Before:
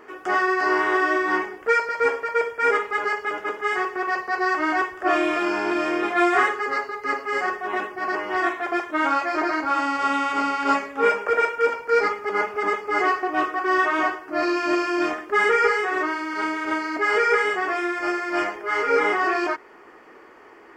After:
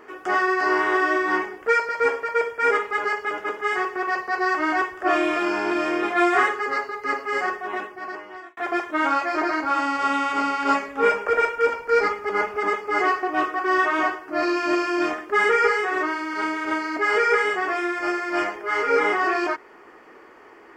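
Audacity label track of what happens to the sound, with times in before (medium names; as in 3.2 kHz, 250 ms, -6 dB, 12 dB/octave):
7.440000	8.570000	fade out
10.880000	12.600000	bass shelf 74 Hz +10.5 dB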